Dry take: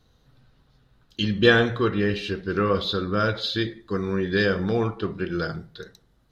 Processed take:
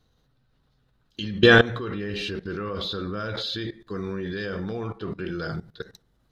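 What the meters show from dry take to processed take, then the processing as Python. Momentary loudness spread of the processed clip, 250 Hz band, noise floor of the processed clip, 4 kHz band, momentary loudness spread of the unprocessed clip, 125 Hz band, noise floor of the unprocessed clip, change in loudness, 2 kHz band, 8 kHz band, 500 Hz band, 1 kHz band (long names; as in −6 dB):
19 LU, −3.0 dB, −67 dBFS, −0.5 dB, 11 LU, −2.5 dB, −63 dBFS, −1.5 dB, +1.0 dB, can't be measured, −1.5 dB, −2.5 dB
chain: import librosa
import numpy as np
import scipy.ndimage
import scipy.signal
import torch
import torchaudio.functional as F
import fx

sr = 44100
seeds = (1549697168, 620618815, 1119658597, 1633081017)

y = fx.level_steps(x, sr, step_db=18)
y = F.gain(torch.from_numpy(y), 5.5).numpy()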